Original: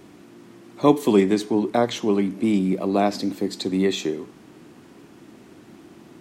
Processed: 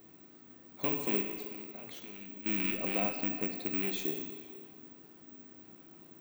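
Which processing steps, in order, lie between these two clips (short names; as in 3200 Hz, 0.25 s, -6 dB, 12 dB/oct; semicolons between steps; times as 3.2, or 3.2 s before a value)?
rattling part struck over -24 dBFS, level -11 dBFS; 3–3.82 LPF 1600 Hz 6 dB/oct; limiter -12.5 dBFS, peak gain reduction 9 dB; 1.21–2.46 level quantiser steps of 19 dB; resonator 260 Hz, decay 0.75 s, mix 80%; reverb RT60 2.2 s, pre-delay 9 ms, DRR 4.5 dB; careless resampling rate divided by 2×, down filtered, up zero stuff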